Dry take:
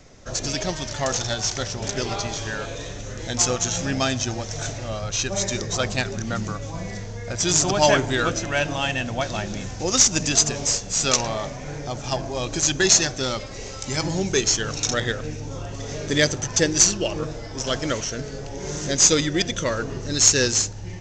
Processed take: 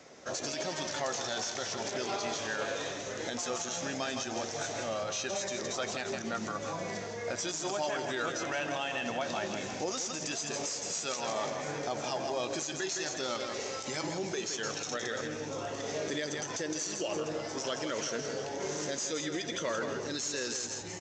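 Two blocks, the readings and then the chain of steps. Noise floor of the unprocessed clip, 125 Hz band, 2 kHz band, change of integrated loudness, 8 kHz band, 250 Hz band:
−35 dBFS, −18.0 dB, −9.5 dB, −12.5 dB, −15.5 dB, −11.5 dB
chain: double-tracking delay 13 ms −12.5 dB
downward compressor, threshold −24 dBFS, peak gain reduction 13 dB
multi-tap delay 163/341/697 ms −9/−17.5/−19.5 dB
brickwall limiter −22 dBFS, peak gain reduction 10.5 dB
Bessel high-pass filter 450 Hz, order 2
spectral tilt −1.5 dB per octave

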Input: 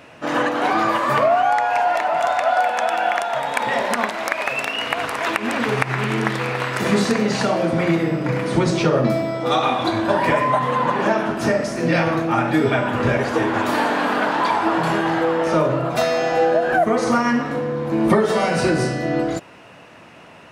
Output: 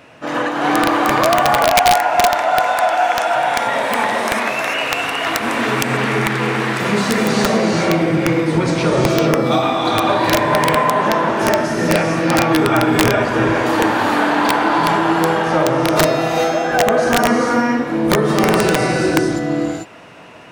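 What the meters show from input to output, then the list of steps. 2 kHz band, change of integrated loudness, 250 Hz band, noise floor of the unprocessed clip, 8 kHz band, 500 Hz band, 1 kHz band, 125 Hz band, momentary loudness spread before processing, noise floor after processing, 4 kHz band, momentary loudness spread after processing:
+4.5 dB, +4.0 dB, +4.0 dB, −44 dBFS, +8.5 dB, +3.0 dB, +4.0 dB, +3.0 dB, 5 LU, −24 dBFS, +6.5 dB, 4 LU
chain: reverb whose tail is shaped and stops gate 470 ms rising, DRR −2 dB
wrap-around overflow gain 4.5 dB

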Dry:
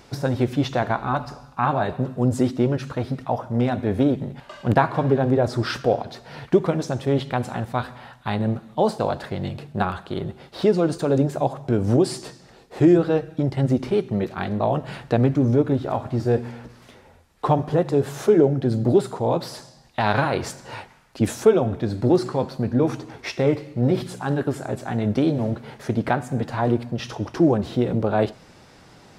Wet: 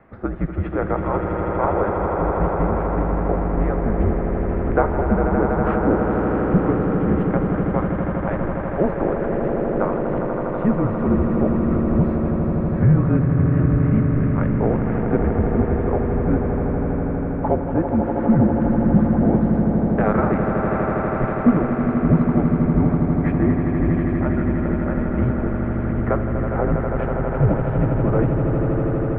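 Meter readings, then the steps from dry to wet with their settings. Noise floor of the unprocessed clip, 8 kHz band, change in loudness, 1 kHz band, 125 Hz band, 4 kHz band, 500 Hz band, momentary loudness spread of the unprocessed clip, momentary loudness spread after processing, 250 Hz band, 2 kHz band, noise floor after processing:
−50 dBFS, below −40 dB, +2.5 dB, +1.5 dB, +4.5 dB, below −20 dB, 0.0 dB, 11 LU, 6 LU, +4.0 dB, +0.5 dB, −24 dBFS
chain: single-sideband voice off tune −200 Hz 240–2,200 Hz
echo that builds up and dies away 81 ms, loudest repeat 8, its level −8 dB

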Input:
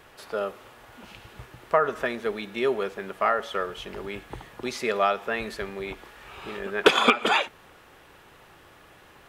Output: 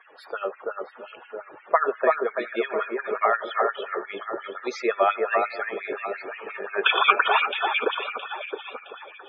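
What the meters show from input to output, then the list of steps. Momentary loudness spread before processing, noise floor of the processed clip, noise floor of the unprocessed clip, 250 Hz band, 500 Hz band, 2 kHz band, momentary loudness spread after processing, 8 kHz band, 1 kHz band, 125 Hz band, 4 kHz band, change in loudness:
21 LU, −49 dBFS, −53 dBFS, −3.0 dB, +1.0 dB, +3.0 dB, 17 LU, below −10 dB, +3.5 dB, below −15 dB, 0.0 dB, +1.0 dB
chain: delay that plays each chunk backwards 574 ms, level −13 dB
on a send: delay that swaps between a low-pass and a high-pass 333 ms, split 2,000 Hz, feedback 61%, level −3 dB
on the sum: spectral peaks only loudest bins 64
auto-filter high-pass sine 5.7 Hz 350–2,400 Hz
level −1 dB

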